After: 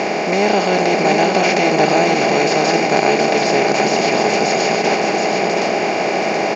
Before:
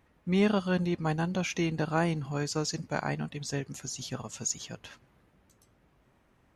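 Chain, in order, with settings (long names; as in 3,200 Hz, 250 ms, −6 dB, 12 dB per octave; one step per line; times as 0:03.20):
compressor on every frequency bin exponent 0.2
parametric band 1,200 Hz −8.5 dB 2 octaves
leveller curve on the samples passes 2
loudspeaker in its box 380–4,500 Hz, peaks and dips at 730 Hz +10 dB, 1,400 Hz −4 dB, 2,200 Hz +5 dB, 3,400 Hz −8 dB
on a send: single-tap delay 724 ms −4.5 dB
on the sum: level +6 dB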